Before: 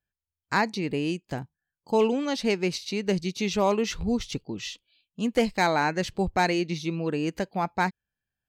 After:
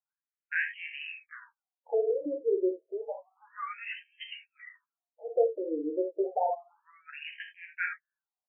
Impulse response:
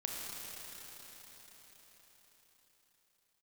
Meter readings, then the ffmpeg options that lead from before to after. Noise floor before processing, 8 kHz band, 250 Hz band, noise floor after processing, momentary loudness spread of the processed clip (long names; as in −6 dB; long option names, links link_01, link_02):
below −85 dBFS, below −40 dB, −12.5 dB, below −85 dBFS, 17 LU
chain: -filter_complex "[0:a]asplit=2[link_01][link_02];[link_02]adelay=13,volume=-3.5dB[link_03];[link_01][link_03]amix=inputs=2:normalize=0[link_04];[1:a]atrim=start_sample=2205,afade=type=out:start_time=0.13:duration=0.01,atrim=end_sample=6174[link_05];[link_04][link_05]afir=irnorm=-1:irlink=0,afftfilt=real='re*between(b*sr/1024,390*pow(2300/390,0.5+0.5*sin(2*PI*0.3*pts/sr))/1.41,390*pow(2300/390,0.5+0.5*sin(2*PI*0.3*pts/sr))*1.41)':imag='im*between(b*sr/1024,390*pow(2300/390,0.5+0.5*sin(2*PI*0.3*pts/sr))/1.41,390*pow(2300/390,0.5+0.5*sin(2*PI*0.3*pts/sr))*1.41)':win_size=1024:overlap=0.75"